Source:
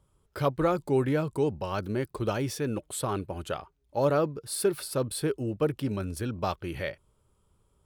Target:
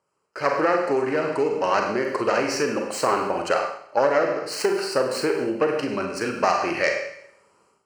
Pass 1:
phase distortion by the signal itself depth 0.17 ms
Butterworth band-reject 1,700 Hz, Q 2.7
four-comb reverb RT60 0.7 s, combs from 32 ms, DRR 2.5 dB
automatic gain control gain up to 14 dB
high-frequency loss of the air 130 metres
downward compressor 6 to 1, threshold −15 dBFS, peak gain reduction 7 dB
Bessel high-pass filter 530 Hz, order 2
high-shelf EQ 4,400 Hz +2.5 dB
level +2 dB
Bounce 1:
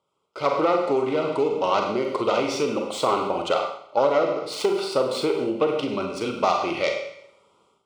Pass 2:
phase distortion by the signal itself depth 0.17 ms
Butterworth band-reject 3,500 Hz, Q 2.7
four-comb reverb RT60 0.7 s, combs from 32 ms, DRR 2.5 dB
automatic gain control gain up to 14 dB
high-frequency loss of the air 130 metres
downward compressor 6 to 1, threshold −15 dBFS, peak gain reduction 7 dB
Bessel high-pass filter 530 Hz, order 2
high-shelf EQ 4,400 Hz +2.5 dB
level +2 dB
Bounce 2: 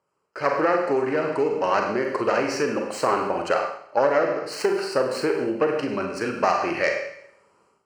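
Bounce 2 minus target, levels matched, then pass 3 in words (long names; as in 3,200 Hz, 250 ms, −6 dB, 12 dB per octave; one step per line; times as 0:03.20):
8,000 Hz band −4.5 dB
phase distortion by the signal itself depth 0.17 ms
Butterworth band-reject 3,500 Hz, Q 2.7
four-comb reverb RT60 0.7 s, combs from 32 ms, DRR 2.5 dB
automatic gain control gain up to 14 dB
high-frequency loss of the air 130 metres
downward compressor 6 to 1, threshold −15 dBFS, peak gain reduction 7 dB
Bessel high-pass filter 530 Hz, order 2
high-shelf EQ 4,400 Hz +9 dB
level +2 dB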